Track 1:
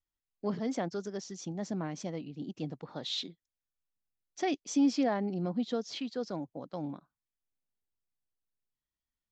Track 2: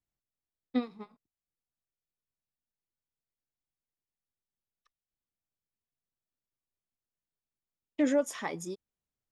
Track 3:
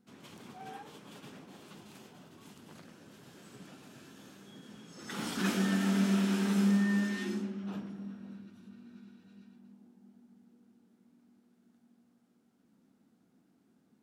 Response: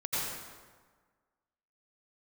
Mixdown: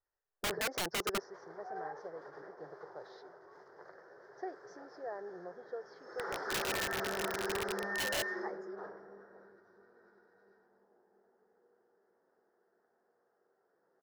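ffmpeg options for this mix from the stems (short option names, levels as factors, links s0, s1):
-filter_complex "[0:a]acompressor=threshold=0.0282:ratio=4,volume=0.562,afade=t=out:st=0.99:d=0.36:silence=0.223872,asplit=2[s0][s1];[1:a]asoftclip=type=tanh:threshold=0.0944,flanger=delay=7.9:depth=2:regen=-47:speed=0.45:shape=sinusoidal,volume=0.2[s2];[2:a]aeval=exprs='if(lt(val(0),0),0.708*val(0),val(0))':c=same,highpass=f=280:p=1,adelay=1100,volume=0.447[s3];[s1]apad=whole_len=410765[s4];[s2][s4]sidechaincompress=threshold=0.00316:ratio=8:attack=16:release=490[s5];[s0][s5][s3]amix=inputs=3:normalize=0,firequalizer=gain_entry='entry(100,0);entry(150,-3);entry(240,-16);entry(390,15);entry(1200,10);entry(1800,13);entry(2600,-25);entry(5100,1);entry(7900,-26)':delay=0.05:min_phase=1,aeval=exprs='(mod(26.6*val(0)+1,2)-1)/26.6':c=same"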